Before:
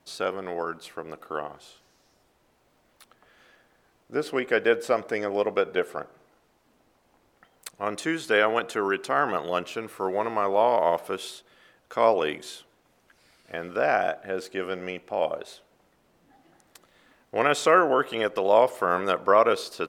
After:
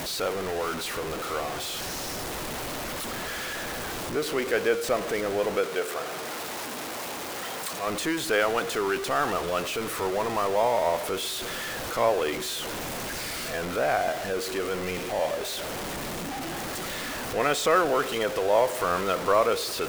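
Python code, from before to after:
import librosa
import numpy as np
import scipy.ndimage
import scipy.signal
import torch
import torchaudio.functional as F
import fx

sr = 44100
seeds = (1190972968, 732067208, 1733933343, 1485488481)

y = x + 0.5 * 10.0 ** (-23.0 / 20.0) * np.sign(x)
y = fx.highpass(y, sr, hz=340.0, slope=6, at=(5.64, 7.87))
y = y * 10.0 ** (-4.5 / 20.0)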